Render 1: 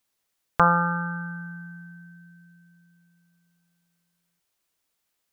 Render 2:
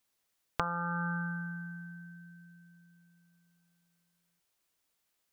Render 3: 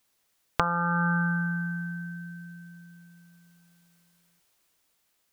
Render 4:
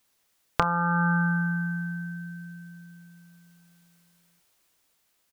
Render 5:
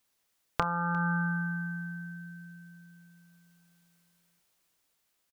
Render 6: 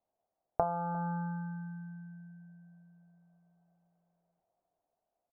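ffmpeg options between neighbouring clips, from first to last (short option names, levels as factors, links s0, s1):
-af "acompressor=threshold=0.0447:ratio=10,volume=0.794"
-af "dynaudnorm=f=230:g=11:m=1.78,volume=2.24"
-filter_complex "[0:a]asplit=2[s0][s1];[s1]adelay=28,volume=0.2[s2];[s0][s2]amix=inputs=2:normalize=0,volume=1.19"
-af "aecho=1:1:352:0.0794,volume=0.531"
-af "lowpass=f=700:t=q:w=7.1,volume=0.501"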